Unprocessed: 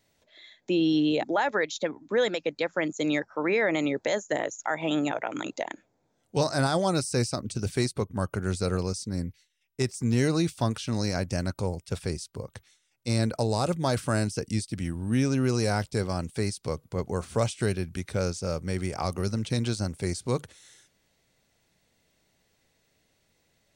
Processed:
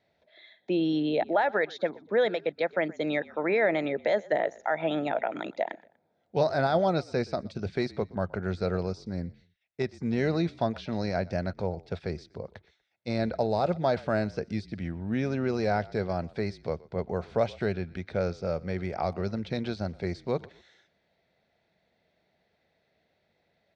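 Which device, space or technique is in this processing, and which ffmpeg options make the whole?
frequency-shifting delay pedal into a guitar cabinet: -filter_complex "[0:a]asplit=3[link_01][link_02][link_03];[link_02]adelay=121,afreqshift=-40,volume=-22dB[link_04];[link_03]adelay=242,afreqshift=-80,volume=-31.1dB[link_05];[link_01][link_04][link_05]amix=inputs=3:normalize=0,highpass=84,equalizer=frequency=120:width_type=q:width=4:gain=-9,equalizer=frequency=280:width_type=q:width=4:gain=-6,equalizer=frequency=670:width_type=q:width=4:gain=6,equalizer=frequency=1100:width_type=q:width=4:gain=-6,equalizer=frequency=2900:width_type=q:width=4:gain=-8,lowpass=frequency=3800:width=0.5412,lowpass=frequency=3800:width=1.3066"

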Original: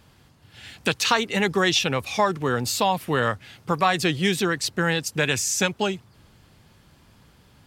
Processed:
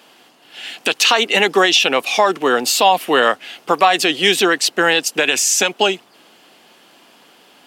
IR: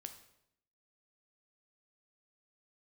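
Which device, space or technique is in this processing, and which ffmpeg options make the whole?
laptop speaker: -af "highpass=frequency=270:width=0.5412,highpass=frequency=270:width=1.3066,equalizer=frequency=710:width_type=o:width=0.28:gain=6,equalizer=frequency=2900:width_type=o:width=0.41:gain=7,alimiter=limit=-11.5dB:level=0:latency=1:release=62,volume=9dB"

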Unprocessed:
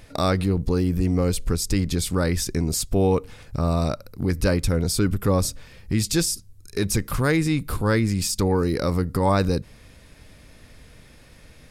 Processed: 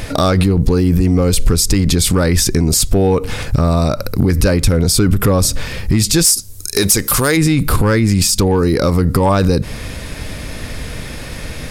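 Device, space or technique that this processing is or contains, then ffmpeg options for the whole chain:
loud club master: -filter_complex "[0:a]asplit=3[link_01][link_02][link_03];[link_01]afade=type=out:start_time=6.24:duration=0.02[link_04];[link_02]bass=frequency=250:gain=-8,treble=frequency=4000:gain=11,afade=type=in:start_time=6.24:duration=0.02,afade=type=out:start_time=7.36:duration=0.02[link_05];[link_03]afade=type=in:start_time=7.36:duration=0.02[link_06];[link_04][link_05][link_06]amix=inputs=3:normalize=0,acompressor=threshold=-24dB:ratio=2.5,asoftclip=type=hard:threshold=-17dB,alimiter=level_in=25.5dB:limit=-1dB:release=50:level=0:latency=1,volume=-3.5dB"

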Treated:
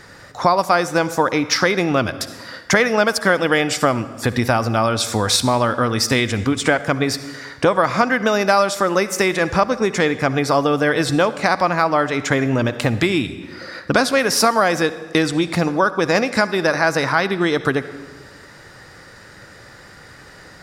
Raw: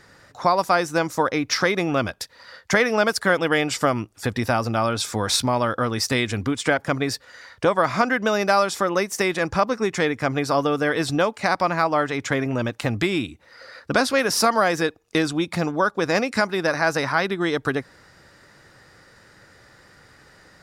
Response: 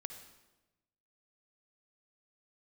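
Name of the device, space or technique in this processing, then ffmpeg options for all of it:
ducked reverb: -filter_complex "[0:a]asplit=3[link_01][link_02][link_03];[1:a]atrim=start_sample=2205[link_04];[link_02][link_04]afir=irnorm=-1:irlink=0[link_05];[link_03]apad=whole_len=909545[link_06];[link_05][link_06]sidechaincompress=threshold=-25dB:ratio=8:attack=20:release=713,volume=8.5dB[link_07];[link_01][link_07]amix=inputs=2:normalize=0"

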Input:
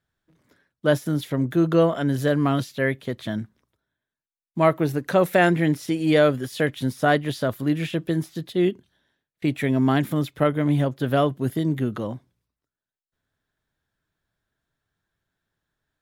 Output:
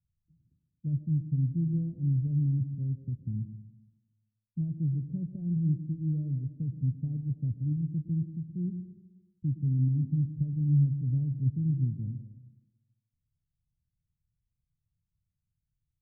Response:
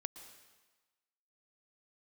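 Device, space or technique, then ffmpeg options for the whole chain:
club heard from the street: -filter_complex "[0:a]alimiter=limit=-10.5dB:level=0:latency=1:release=137,lowpass=frequency=150:width=0.5412,lowpass=frequency=150:width=1.3066[link_01];[1:a]atrim=start_sample=2205[link_02];[link_01][link_02]afir=irnorm=-1:irlink=0,volume=5.5dB"

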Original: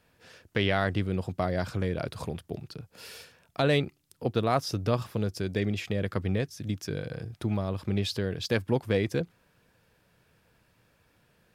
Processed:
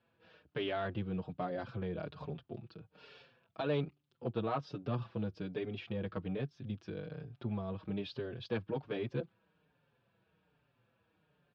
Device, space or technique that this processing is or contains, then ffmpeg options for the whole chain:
barber-pole flanger into a guitar amplifier: -filter_complex "[0:a]asplit=2[link_01][link_02];[link_02]adelay=5.4,afreqshift=-1.2[link_03];[link_01][link_03]amix=inputs=2:normalize=1,asoftclip=type=tanh:threshold=-20.5dB,highpass=85,equalizer=frequency=90:width_type=q:width=4:gain=-6,equalizer=frequency=140:width_type=q:width=4:gain=3,equalizer=frequency=2000:width_type=q:width=4:gain=-8,lowpass=frequency=3500:width=0.5412,lowpass=frequency=3500:width=1.3066,volume=-4.5dB"

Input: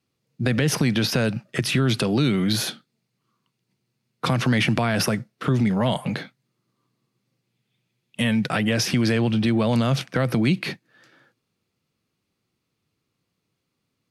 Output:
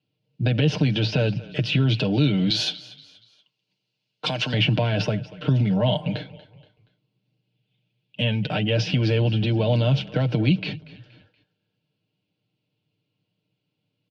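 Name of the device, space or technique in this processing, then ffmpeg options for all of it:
frequency-shifting delay pedal into a guitar cabinet: -filter_complex "[0:a]asplit=4[link_01][link_02][link_03][link_04];[link_02]adelay=237,afreqshift=-32,volume=-19dB[link_05];[link_03]adelay=474,afreqshift=-64,volume=-26.5dB[link_06];[link_04]adelay=711,afreqshift=-96,volume=-34.1dB[link_07];[link_01][link_05][link_06][link_07]amix=inputs=4:normalize=0,highpass=86,equalizer=frequency=110:width_type=q:width=4:gain=8,equalizer=frequency=200:width_type=q:width=4:gain=4,equalizer=frequency=590:width_type=q:width=4:gain=5,equalizer=frequency=1200:width_type=q:width=4:gain=-9,equalizer=frequency=1900:width_type=q:width=4:gain=-9,equalizer=frequency=2900:width_type=q:width=4:gain=8,lowpass=frequency=4500:width=0.5412,lowpass=frequency=4500:width=1.3066,asettb=1/sr,asplit=3[link_08][link_09][link_10];[link_08]atrim=end=2.504[link_11];[link_09]atrim=start=2.5:end=4.54,asetpts=PTS-STARTPTS,afade=type=in:duration=0.004:curve=qsin,afade=type=out:start_time=2.036:duration=0.004:curve=qsin,aemphasis=mode=production:type=riaa[link_12];[link_10]atrim=start=4.536[link_13];[link_11][link_12]acrossfade=duration=0.004:curve1=hsin:curve2=qsin[link_14];[link_14][link_13]acrossfade=duration=0.004:curve1=qsin:curve2=hsin,bandreject=frequency=1200:width=11,aecho=1:1:6.6:0.63,volume=-3.5dB"

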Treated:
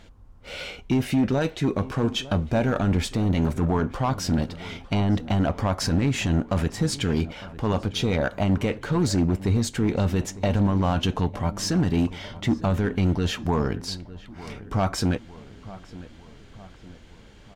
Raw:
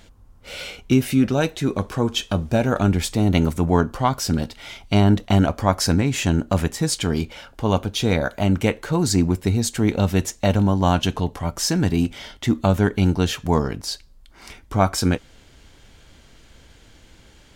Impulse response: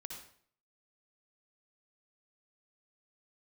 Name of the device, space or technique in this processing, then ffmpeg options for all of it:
limiter into clipper: -filter_complex "[0:a]alimiter=limit=-11.5dB:level=0:latency=1:release=15,asoftclip=type=hard:threshold=-16dB,lowpass=frequency=3500:poles=1,asplit=2[link_01][link_02];[link_02]adelay=904,lowpass=frequency=2200:poles=1,volume=-17dB,asplit=2[link_03][link_04];[link_04]adelay=904,lowpass=frequency=2200:poles=1,volume=0.54,asplit=2[link_05][link_06];[link_06]adelay=904,lowpass=frequency=2200:poles=1,volume=0.54,asplit=2[link_07][link_08];[link_08]adelay=904,lowpass=frequency=2200:poles=1,volume=0.54,asplit=2[link_09][link_10];[link_10]adelay=904,lowpass=frequency=2200:poles=1,volume=0.54[link_11];[link_01][link_03][link_05][link_07][link_09][link_11]amix=inputs=6:normalize=0"

